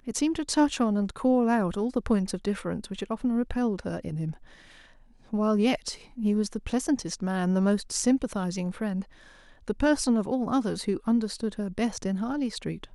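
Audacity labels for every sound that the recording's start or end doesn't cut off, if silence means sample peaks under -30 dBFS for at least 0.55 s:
5.330000	9.010000	sound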